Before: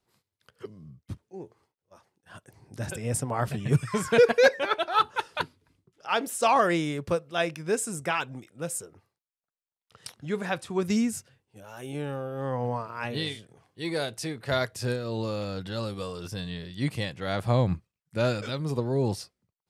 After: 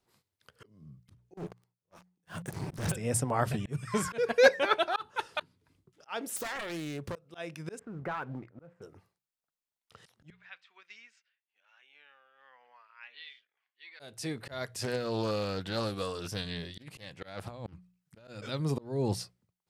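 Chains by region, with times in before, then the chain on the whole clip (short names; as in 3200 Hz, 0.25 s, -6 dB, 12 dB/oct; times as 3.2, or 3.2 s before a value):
1.37–2.92 bell 170 Hz +12 dB 0.31 oct + sample leveller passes 5
6.36–7.16 self-modulated delay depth 0.45 ms + overloaded stage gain 17 dB + compressor 16:1, threshold -33 dBFS
7.79–8.82 LPF 1800 Hz 24 dB/oct + sample leveller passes 1 + compressor 2.5:1, threshold -36 dBFS
10.3–14 ladder band-pass 2700 Hz, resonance 30% + air absorption 150 m
14.68–18.28 low shelf 380 Hz -4.5 dB + negative-ratio compressor -31 dBFS, ratio -0.5 + Doppler distortion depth 0.31 ms
whole clip: notches 60/120/180 Hz; auto swell 0.377 s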